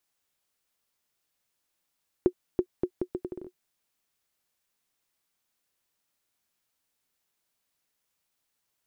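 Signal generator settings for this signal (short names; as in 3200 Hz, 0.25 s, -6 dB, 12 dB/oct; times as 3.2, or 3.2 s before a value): bouncing ball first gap 0.33 s, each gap 0.74, 362 Hz, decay 71 ms -10.5 dBFS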